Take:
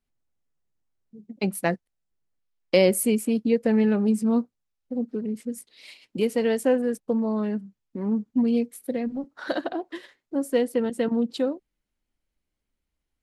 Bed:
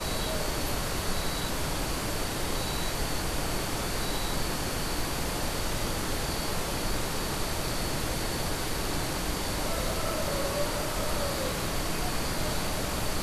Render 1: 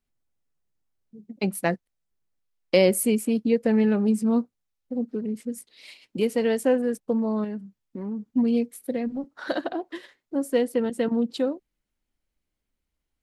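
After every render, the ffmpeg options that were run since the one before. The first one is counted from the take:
-filter_complex "[0:a]asettb=1/sr,asplit=3[s0][s1][s2];[s0]atrim=end=7.444[s3];[s1]atrim=start=7.44:end=8.24,asetpts=PTS-STARTPTS,afade=t=in:d=0.004:c=qsin,afade=t=out:st=0.796:d=0.004:c=qsin,acompressor=threshold=0.0316:ratio=3:attack=3.2:release=140:knee=1:detection=peak[s4];[s2]atrim=start=8.236[s5];[s3][s4]acrossfade=d=0.004:c1=hsin:c2=qsin[s6];[s6][s5]acrossfade=d=0.004:c1=qsin:c2=hsin"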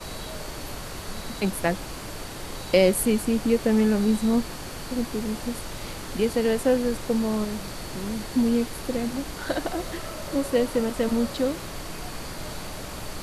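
-filter_complex "[1:a]volume=0.562[s0];[0:a][s0]amix=inputs=2:normalize=0"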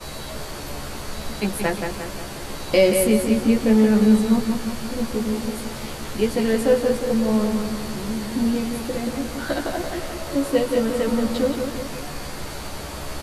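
-filter_complex "[0:a]asplit=2[s0][s1];[s1]adelay=14,volume=0.75[s2];[s0][s2]amix=inputs=2:normalize=0,asplit=2[s3][s4];[s4]adelay=177,lowpass=f=4300:p=1,volume=0.531,asplit=2[s5][s6];[s6]adelay=177,lowpass=f=4300:p=1,volume=0.54,asplit=2[s7][s8];[s8]adelay=177,lowpass=f=4300:p=1,volume=0.54,asplit=2[s9][s10];[s10]adelay=177,lowpass=f=4300:p=1,volume=0.54,asplit=2[s11][s12];[s12]adelay=177,lowpass=f=4300:p=1,volume=0.54,asplit=2[s13][s14];[s14]adelay=177,lowpass=f=4300:p=1,volume=0.54,asplit=2[s15][s16];[s16]adelay=177,lowpass=f=4300:p=1,volume=0.54[s17];[s3][s5][s7][s9][s11][s13][s15][s17]amix=inputs=8:normalize=0"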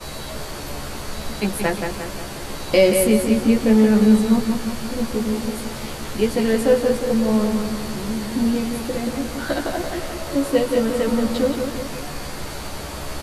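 -af "volume=1.19"

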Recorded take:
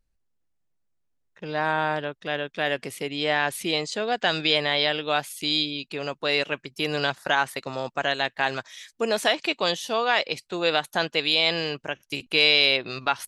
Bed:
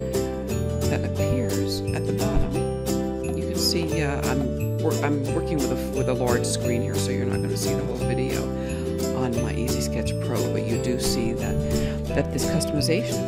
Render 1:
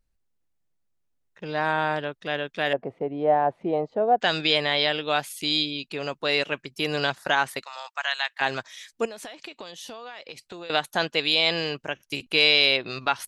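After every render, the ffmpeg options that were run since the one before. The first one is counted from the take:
-filter_complex "[0:a]asettb=1/sr,asplit=3[s0][s1][s2];[s0]atrim=end=2.734[s3];[s1]atrim=start=2.73:end=4.21,asetpts=PTS-STARTPTS,afade=t=in:d=0.004:c=qsin,afade=t=out:st=1.476:d=0.004:c=qsin,lowpass=f=730:t=q:w=2.4[s4];[s2]atrim=start=4.206[s5];[s3][s4]acrossfade=d=0.004:c1=hsin:c2=qsin[s6];[s6][s5]acrossfade=d=0.004:c1=qsin:c2=hsin,asplit=3[s7][s8][s9];[s7]afade=t=out:st=7.62:d=0.02[s10];[s8]highpass=f=900:w=0.5412,highpass=f=900:w=1.3066,afade=t=in:st=7.62:d=0.02,afade=t=out:st=8.4:d=0.02[s11];[s9]afade=t=in:st=8.4:d=0.02[s12];[s10][s11][s12]amix=inputs=3:normalize=0,asettb=1/sr,asplit=3[s13][s14][s15];[s13]atrim=end=9.054[s16];[s14]atrim=start=9.05:end=10.7,asetpts=PTS-STARTPTS,afade=t=in:d=0.004:c=qsin,afade=t=out:st=1.646:d=0.004:c=qsin,acompressor=threshold=0.0178:ratio=16:attack=3.2:release=140:knee=1:detection=peak[s17];[s15]atrim=start=10.696[s18];[s16][s17]acrossfade=d=0.004:c1=hsin:c2=qsin[s19];[s19][s18]acrossfade=d=0.004:c1=qsin:c2=hsin"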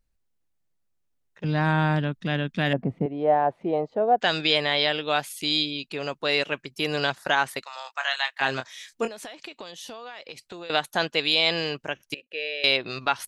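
-filter_complex "[0:a]asettb=1/sr,asplit=3[s0][s1][s2];[s0]atrim=end=1.444[s3];[s1]atrim=start=1.44:end=3.06,asetpts=PTS-STARTPTS,afade=t=in:d=0.004:c=qsin,afade=t=out:st=1.616:d=0.004:c=qsin,lowshelf=f=310:t=q:w=1.5:g=12[s4];[s2]atrim=start=3.056[s5];[s3][s4]acrossfade=d=0.004:c1=hsin:c2=qsin[s6];[s6][s5]acrossfade=d=0.004:c1=qsin:c2=hsin,asettb=1/sr,asplit=3[s7][s8][s9];[s7]atrim=end=7.844[s10];[s8]atrim=start=7.84:end=9.09,asetpts=PTS-STARTPTS,afade=t=in:d=0.004:c=qsin,afade=t=out:st=1.246:d=0.004:c=qsin,asplit=2[s11][s12];[s12]adelay=23,volume=0.447[s13];[s11][s13]amix=inputs=2:normalize=0,atrim=end_sample=55125[s14];[s9]atrim=start=9.086[s15];[s10][s14]acrossfade=d=0.004:c1=hsin:c2=qsin[s16];[s16][s15]acrossfade=d=0.004:c1=qsin:c2=hsin,asettb=1/sr,asplit=3[s17][s18][s19];[s17]atrim=end=12.144[s20];[s18]atrim=start=12.14:end=12.64,asetpts=PTS-STARTPTS,afade=t=in:d=0.004:c=qsin,afade=t=out:st=0.496:d=0.004:c=qsin,asplit=3[s21][s22][s23];[s21]bandpass=f=530:t=q:w=8,volume=1[s24];[s22]bandpass=f=1840:t=q:w=8,volume=0.501[s25];[s23]bandpass=f=2480:t=q:w=8,volume=0.355[s26];[s24][s25][s26]amix=inputs=3:normalize=0[s27];[s19]atrim=start=12.636[s28];[s20][s27]acrossfade=d=0.004:c1=hsin:c2=qsin[s29];[s29][s28]acrossfade=d=0.004:c1=qsin:c2=hsin"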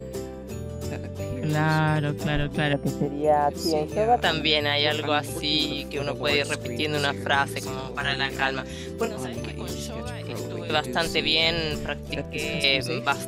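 -filter_complex "[1:a]volume=0.376[s0];[0:a][s0]amix=inputs=2:normalize=0"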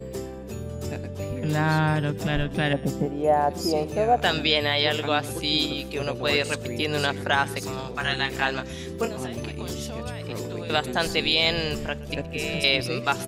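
-af "aecho=1:1:121:0.0794"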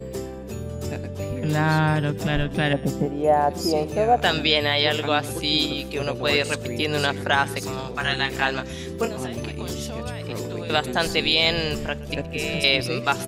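-af "volume=1.26"

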